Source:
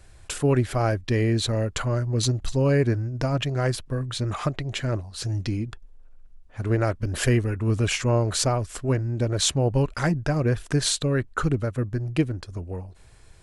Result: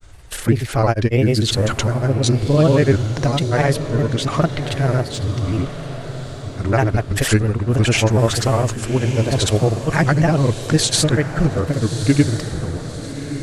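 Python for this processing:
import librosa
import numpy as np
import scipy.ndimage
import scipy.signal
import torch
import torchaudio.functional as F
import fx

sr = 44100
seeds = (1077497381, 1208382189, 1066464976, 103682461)

y = fx.granulator(x, sr, seeds[0], grain_ms=100.0, per_s=20.0, spray_ms=100.0, spread_st=3)
y = fx.echo_diffused(y, sr, ms=1210, feedback_pct=45, wet_db=-10.5)
y = y * 10.0 ** (8.0 / 20.0)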